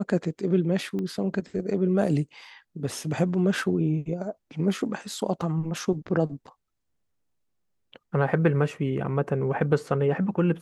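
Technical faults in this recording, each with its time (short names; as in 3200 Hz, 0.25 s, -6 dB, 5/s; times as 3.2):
0.99 pop -22 dBFS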